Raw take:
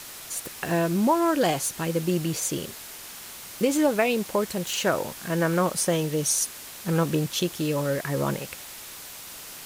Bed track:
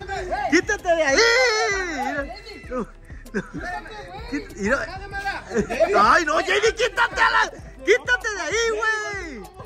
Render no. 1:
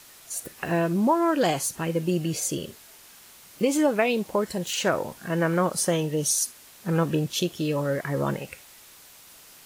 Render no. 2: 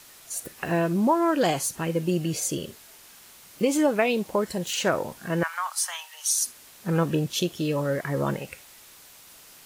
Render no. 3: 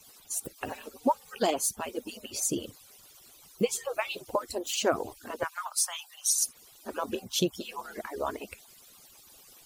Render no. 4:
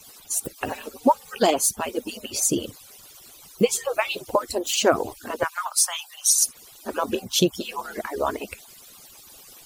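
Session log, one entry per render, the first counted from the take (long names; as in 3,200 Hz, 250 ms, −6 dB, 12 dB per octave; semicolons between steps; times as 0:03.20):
noise reduction from a noise print 9 dB
0:05.43–0:06.41: Butterworth high-pass 840 Hz 48 dB per octave
harmonic-percussive split with one part muted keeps percussive; parametric band 1,800 Hz −8 dB 0.82 octaves
level +7.5 dB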